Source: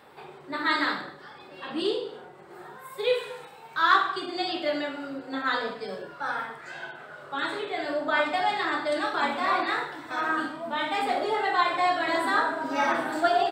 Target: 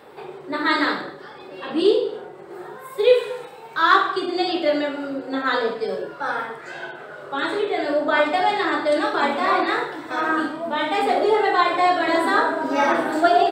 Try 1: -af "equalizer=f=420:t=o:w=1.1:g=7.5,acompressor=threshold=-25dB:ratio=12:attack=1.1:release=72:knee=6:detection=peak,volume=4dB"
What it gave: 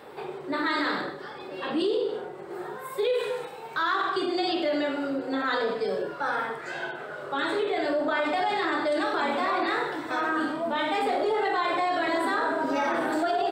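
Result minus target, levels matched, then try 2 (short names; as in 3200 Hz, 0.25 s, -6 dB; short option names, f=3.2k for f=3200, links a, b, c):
compressor: peak gain reduction +14.5 dB
-af "equalizer=f=420:t=o:w=1.1:g=7.5,volume=4dB"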